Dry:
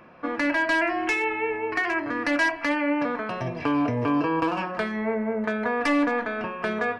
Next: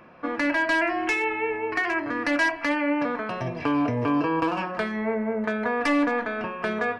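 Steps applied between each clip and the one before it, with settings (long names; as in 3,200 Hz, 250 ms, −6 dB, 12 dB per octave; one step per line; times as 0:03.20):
no processing that can be heard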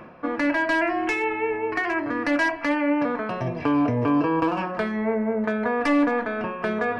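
tilt shelving filter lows +3 dB, about 1,400 Hz
reversed playback
upward compression, threshold −25 dBFS
reversed playback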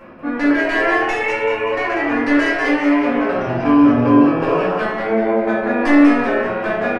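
on a send: echo with shifted repeats 192 ms, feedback 42%, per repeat +120 Hz, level −5 dB
on the sum: rectangular room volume 140 cubic metres, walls mixed, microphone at 2.2 metres
level −3.5 dB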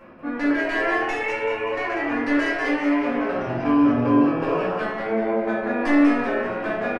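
single-tap delay 661 ms −22.5 dB
level −6 dB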